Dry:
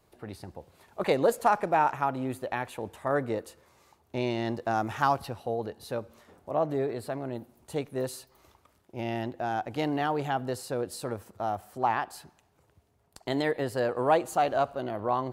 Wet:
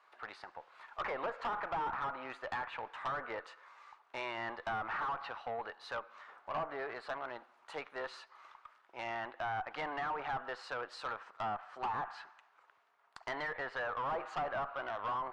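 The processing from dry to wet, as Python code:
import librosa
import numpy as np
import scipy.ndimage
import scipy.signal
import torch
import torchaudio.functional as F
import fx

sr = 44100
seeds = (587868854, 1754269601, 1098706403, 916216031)

y = fx.ladder_bandpass(x, sr, hz=1500.0, resonance_pct=40)
y = fx.tube_stage(y, sr, drive_db=50.0, bias=0.25)
y = fx.env_lowpass_down(y, sr, base_hz=1300.0, full_db=-50.0)
y = y * librosa.db_to_amplitude(17.5)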